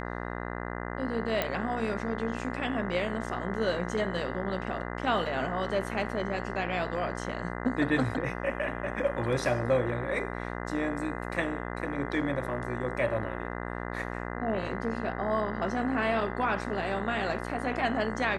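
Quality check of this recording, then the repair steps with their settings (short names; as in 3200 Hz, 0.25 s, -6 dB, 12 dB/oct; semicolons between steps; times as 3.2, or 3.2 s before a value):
buzz 60 Hz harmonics 34 -36 dBFS
1.42 pop -13 dBFS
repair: de-click; de-hum 60 Hz, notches 34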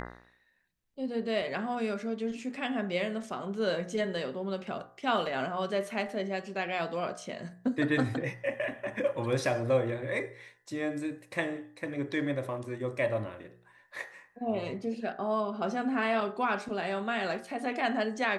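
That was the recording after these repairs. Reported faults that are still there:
none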